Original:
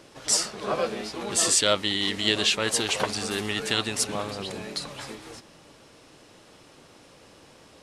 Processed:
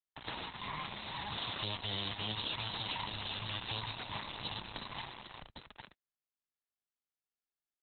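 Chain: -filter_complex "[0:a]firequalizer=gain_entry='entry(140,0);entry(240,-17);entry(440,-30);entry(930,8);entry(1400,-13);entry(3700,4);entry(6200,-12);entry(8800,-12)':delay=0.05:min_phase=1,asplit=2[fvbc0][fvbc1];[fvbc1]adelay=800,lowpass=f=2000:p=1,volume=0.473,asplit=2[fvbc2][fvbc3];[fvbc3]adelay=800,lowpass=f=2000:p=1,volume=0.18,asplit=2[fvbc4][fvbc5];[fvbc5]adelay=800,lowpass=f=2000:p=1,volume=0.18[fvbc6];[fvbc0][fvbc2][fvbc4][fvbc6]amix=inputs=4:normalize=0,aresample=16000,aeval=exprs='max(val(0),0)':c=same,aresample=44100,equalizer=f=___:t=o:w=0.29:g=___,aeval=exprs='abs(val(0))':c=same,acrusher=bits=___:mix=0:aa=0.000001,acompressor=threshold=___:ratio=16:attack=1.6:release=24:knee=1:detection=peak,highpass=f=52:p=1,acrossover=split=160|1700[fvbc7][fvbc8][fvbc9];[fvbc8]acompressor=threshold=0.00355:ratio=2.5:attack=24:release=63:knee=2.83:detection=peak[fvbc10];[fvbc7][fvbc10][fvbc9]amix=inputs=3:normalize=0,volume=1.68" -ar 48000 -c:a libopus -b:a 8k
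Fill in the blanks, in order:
480, -5.5, 6, 0.0224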